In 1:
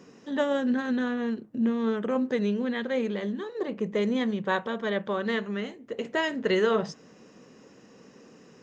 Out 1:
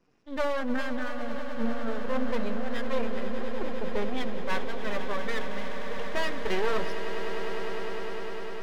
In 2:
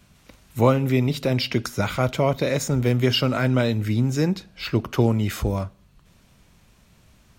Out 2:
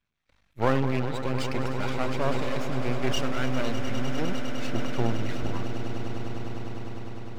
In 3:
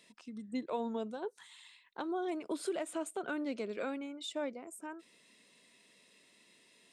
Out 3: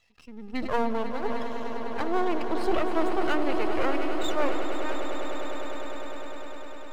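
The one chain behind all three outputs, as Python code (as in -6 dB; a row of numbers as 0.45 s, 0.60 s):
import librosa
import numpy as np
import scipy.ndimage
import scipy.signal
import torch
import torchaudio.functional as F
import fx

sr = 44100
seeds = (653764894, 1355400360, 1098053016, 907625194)

p1 = fx.bin_expand(x, sr, power=1.5)
p2 = fx.low_shelf(p1, sr, hz=330.0, db=-11.5)
p3 = (np.mod(10.0 ** (27.0 / 20.0) * p2 + 1.0, 2.0) - 1.0) / 10.0 ** (27.0 / 20.0)
p4 = p2 + (p3 * 10.0 ** (-9.0 / 20.0))
p5 = fx.air_absorb(p4, sr, metres=260.0)
p6 = np.maximum(p5, 0.0)
p7 = p6 + fx.echo_swell(p6, sr, ms=101, loudest=8, wet_db=-13, dry=0)
p8 = fx.sustainer(p7, sr, db_per_s=21.0)
y = p8 * 10.0 ** (-24 / 20.0) / np.sqrt(np.mean(np.square(p8)))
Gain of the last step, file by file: +5.5 dB, +2.0 dB, +15.0 dB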